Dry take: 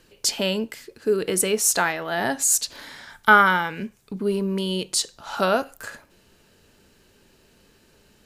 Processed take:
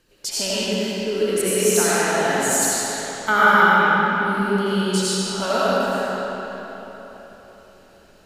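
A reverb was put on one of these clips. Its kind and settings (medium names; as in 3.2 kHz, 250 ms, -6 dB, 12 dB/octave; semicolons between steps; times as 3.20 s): algorithmic reverb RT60 4 s, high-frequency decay 0.75×, pre-delay 45 ms, DRR -10 dB; trim -6.5 dB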